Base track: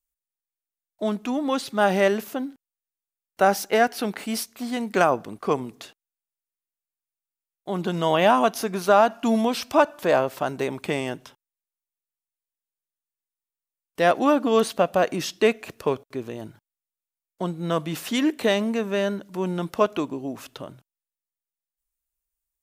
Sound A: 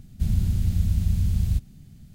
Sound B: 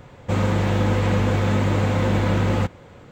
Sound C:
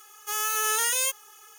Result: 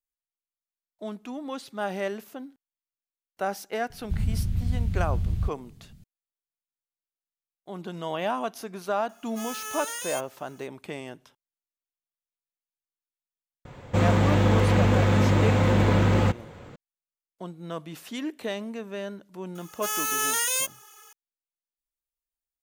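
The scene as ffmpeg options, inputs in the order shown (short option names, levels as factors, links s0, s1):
-filter_complex "[3:a]asplit=2[s0][s1];[0:a]volume=0.299[s2];[1:a]acrossover=split=3700[s3][s4];[s4]acompressor=threshold=0.00141:ratio=4:attack=1:release=60[s5];[s3][s5]amix=inputs=2:normalize=0[s6];[s0]equalizer=f=14000:w=0.86:g=-4.5[s7];[2:a]acontrast=50[s8];[s6]atrim=end=2.14,asetpts=PTS-STARTPTS,volume=0.631,afade=t=in:d=0.004:c=hsin,afade=t=out:st=2.136:d=0.004:c=hsin,adelay=3900[s9];[s7]atrim=end=1.58,asetpts=PTS-STARTPTS,volume=0.376,afade=t=in:d=0.004:c=hsin,afade=t=out:st=1.576:d=0.004:c=hsin,adelay=9090[s10];[s8]atrim=end=3.11,asetpts=PTS-STARTPTS,volume=0.501,afade=t=in:d=0.004:c=hsin,afade=t=out:st=3.106:d=0.004:c=hsin,adelay=13650[s11];[s1]atrim=end=1.58,asetpts=PTS-STARTPTS,volume=0.944,afade=t=in:d=0.004:c=hsin,afade=t=out:st=1.576:d=0.004:c=hsin,adelay=19550[s12];[s2][s9][s10][s11][s12]amix=inputs=5:normalize=0"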